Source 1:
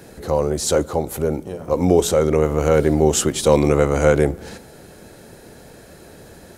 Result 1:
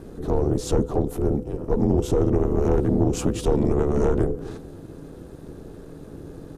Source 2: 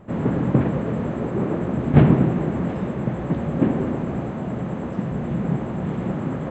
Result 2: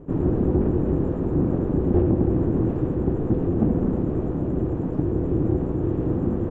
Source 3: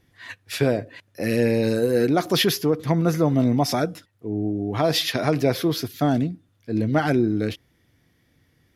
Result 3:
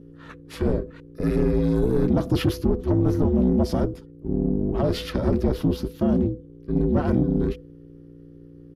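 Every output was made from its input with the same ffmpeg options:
-af "aeval=exprs='if(lt(val(0),0),0.708*val(0),val(0))':c=same,tiltshelf=f=1.3k:g=8,bandreject=f=2.2k:w=7.1,acompressor=threshold=-10dB:ratio=6,afreqshift=-280,aeval=exprs='val(0)+0.00891*(sin(2*PI*60*n/s)+sin(2*PI*2*60*n/s)/2+sin(2*PI*3*60*n/s)/3+sin(2*PI*4*60*n/s)/4+sin(2*PI*5*60*n/s)/5)':c=same,aeval=exprs='val(0)*sin(2*PI*220*n/s)':c=same,asoftclip=type=tanh:threshold=-10dB,aresample=32000,aresample=44100"

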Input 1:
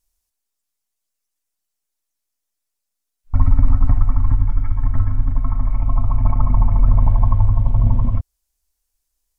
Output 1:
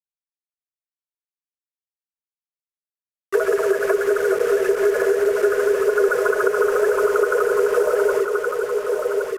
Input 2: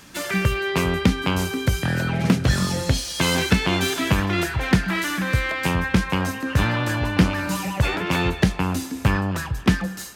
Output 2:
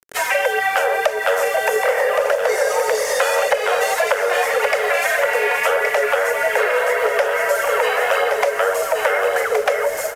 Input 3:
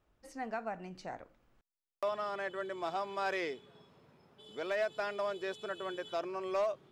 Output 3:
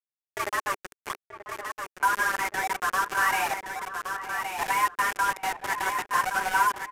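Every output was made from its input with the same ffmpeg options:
-filter_complex "[0:a]acrossover=split=220[a][b];[a]acompressor=threshold=-16dB:ratio=10[c];[c][b]amix=inputs=2:normalize=0,acrossover=split=130|1400[d][e][f];[d]asoftclip=type=hard:threshold=-29.5dB[g];[g][e][f]amix=inputs=3:normalize=0,afreqshift=380,aphaser=in_gain=1:out_gain=1:delay=4.1:decay=0.51:speed=1.7:type=triangular,acrusher=bits=5:mix=0:aa=0.000001,equalizer=f=400:t=o:w=0.67:g=7,equalizer=f=1.6k:t=o:w=0.67:g=7,equalizer=f=4k:t=o:w=0.67:g=-7,asplit=2[h][i];[i]aecho=0:1:1120:0.447[j];[h][j]amix=inputs=2:normalize=0,adynamicequalizer=threshold=0.01:dfrequency=3500:dqfactor=1.5:tfrequency=3500:tqfactor=1.5:attack=5:release=100:ratio=0.375:range=1.5:mode=cutabove:tftype=bell,acompressor=threshold=-20dB:ratio=6,aresample=32000,aresample=44100,asplit=2[k][l];[l]adelay=932.9,volume=-11dB,highshelf=f=4k:g=-21[m];[k][m]amix=inputs=2:normalize=0,volume=5.5dB"

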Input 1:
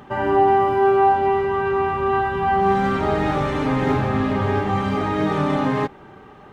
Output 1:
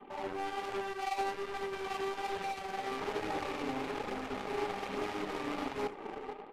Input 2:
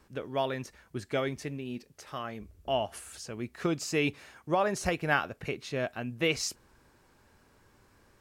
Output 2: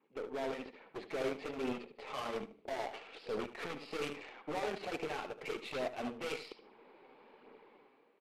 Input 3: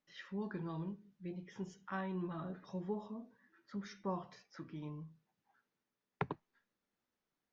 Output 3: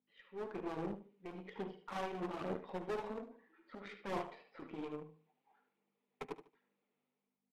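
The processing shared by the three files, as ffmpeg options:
-filter_complex "[0:a]adynamicequalizer=threshold=0.0178:dfrequency=550:dqfactor=1.6:tfrequency=550:tqfactor=1.6:attack=5:release=100:ratio=0.375:range=2.5:mode=cutabove:tftype=bell,asplit=2[a][b];[b]acompressor=threshold=-29dB:ratio=6,volume=2dB[c];[a][c]amix=inputs=2:normalize=0,alimiter=limit=-17.5dB:level=0:latency=1:release=494,dynaudnorm=f=100:g=11:m=13dB,aresample=11025,asoftclip=type=tanh:threshold=-22dB,aresample=44100,aeval=exprs='val(0)+0.00126*(sin(2*PI*50*n/s)+sin(2*PI*2*50*n/s)/2+sin(2*PI*3*50*n/s)/3+sin(2*PI*4*50*n/s)/4+sin(2*PI*5*50*n/s)/5)':c=same,highpass=f=230:w=0.5412,highpass=f=230:w=1.3066,equalizer=f=450:t=q:w=4:g=9,equalizer=f=810:t=q:w=4:g=5,equalizer=f=1.6k:t=q:w=4:g=-9,equalizer=f=2.3k:t=q:w=4:g=5,lowpass=f=3.4k:w=0.5412,lowpass=f=3.4k:w=1.3066,asoftclip=type=hard:threshold=-25dB,flanger=delay=0.1:depth=7.6:regen=-15:speed=1.2:shape=sinusoidal,aecho=1:1:75|150|225:0.398|0.115|0.0335,aeval=exprs='0.0891*(cos(1*acos(clip(val(0)/0.0891,-1,1)))-cos(1*PI/2))+0.00501*(cos(2*acos(clip(val(0)/0.0891,-1,1)))-cos(2*PI/2))+0.02*(cos(3*acos(clip(val(0)/0.0891,-1,1)))-cos(3*PI/2))+0.00398*(cos(4*acos(clip(val(0)/0.0891,-1,1)))-cos(4*PI/2))+0.000501*(cos(7*acos(clip(val(0)/0.0891,-1,1)))-cos(7*PI/2))':c=same,volume=-3.5dB" -ar 32000 -c:a libmp3lame -b:a 80k

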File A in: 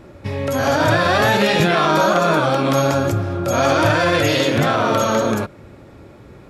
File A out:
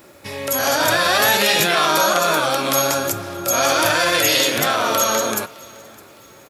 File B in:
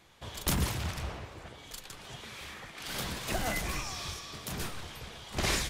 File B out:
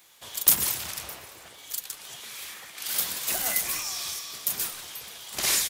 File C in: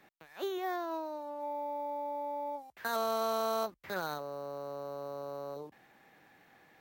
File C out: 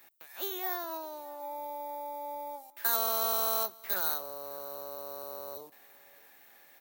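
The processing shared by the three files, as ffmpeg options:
-filter_complex "[0:a]aemphasis=mode=production:type=riaa,asplit=2[a][b];[b]aecho=0:1:611|1222|1833:0.0668|0.0274|0.0112[c];[a][c]amix=inputs=2:normalize=0,volume=-1dB"

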